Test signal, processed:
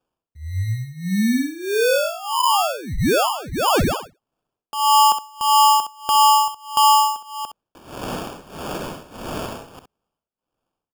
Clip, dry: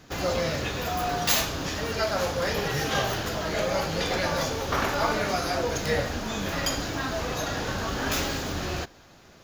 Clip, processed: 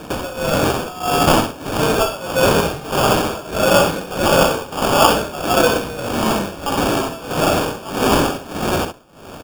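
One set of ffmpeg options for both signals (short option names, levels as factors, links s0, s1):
-filter_complex "[0:a]highpass=160,aresample=16000,aresample=44100,asplit=2[s0][s1];[s1]acompressor=threshold=0.00891:ratio=6,volume=1.26[s2];[s0][s2]amix=inputs=2:normalize=0,tremolo=f=1.6:d=0.89,acrusher=samples=22:mix=1:aa=0.000001,aecho=1:1:53|65:0.15|0.335,acontrast=81,volume=1.88"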